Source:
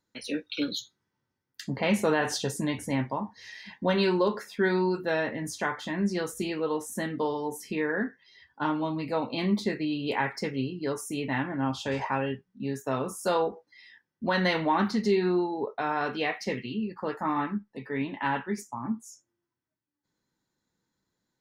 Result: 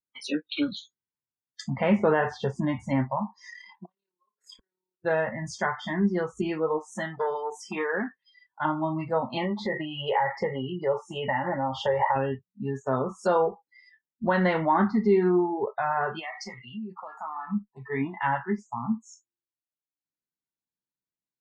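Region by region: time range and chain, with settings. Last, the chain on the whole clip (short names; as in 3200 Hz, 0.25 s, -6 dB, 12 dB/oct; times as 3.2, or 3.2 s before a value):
3.5–5.05 HPF 240 Hz + AM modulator 36 Hz, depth 40% + flipped gate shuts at -29 dBFS, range -40 dB
6.78–8.65 HPF 190 Hz 6 dB/oct + high shelf 3300 Hz +3 dB + core saturation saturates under 860 Hz
9.37–12.16 compressor 8:1, threshold -30 dBFS + small resonant body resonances 560/840/1900/2900 Hz, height 13 dB, ringing for 25 ms
16.19–17.5 low shelf 150 Hz -10.5 dB + compressor 3:1, threshold -36 dBFS
whole clip: LPF 8700 Hz 24 dB/oct; spectral noise reduction 25 dB; treble ducked by the level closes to 1700 Hz, closed at -26.5 dBFS; gain +3.5 dB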